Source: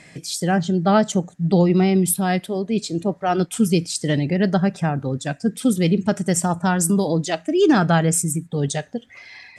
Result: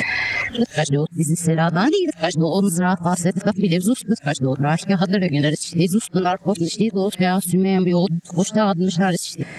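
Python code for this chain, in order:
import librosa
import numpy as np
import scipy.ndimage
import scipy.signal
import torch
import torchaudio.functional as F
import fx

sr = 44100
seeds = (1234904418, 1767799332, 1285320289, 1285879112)

y = x[::-1].copy()
y = fx.band_squash(y, sr, depth_pct=100)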